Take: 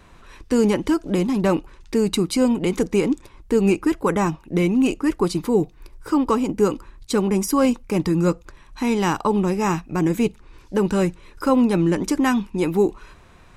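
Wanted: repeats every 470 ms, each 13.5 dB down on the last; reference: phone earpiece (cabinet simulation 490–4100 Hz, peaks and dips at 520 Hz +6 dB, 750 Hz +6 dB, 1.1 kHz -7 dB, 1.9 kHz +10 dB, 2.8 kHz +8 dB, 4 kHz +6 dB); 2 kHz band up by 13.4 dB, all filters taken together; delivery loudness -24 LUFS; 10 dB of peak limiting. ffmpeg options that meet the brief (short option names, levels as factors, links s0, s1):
-af "equalizer=f=2000:t=o:g=8,alimiter=limit=0.188:level=0:latency=1,highpass=490,equalizer=f=520:t=q:w=4:g=6,equalizer=f=750:t=q:w=4:g=6,equalizer=f=1100:t=q:w=4:g=-7,equalizer=f=1900:t=q:w=4:g=10,equalizer=f=2800:t=q:w=4:g=8,equalizer=f=4000:t=q:w=4:g=6,lowpass=f=4100:w=0.5412,lowpass=f=4100:w=1.3066,aecho=1:1:470|940:0.211|0.0444,volume=1.26"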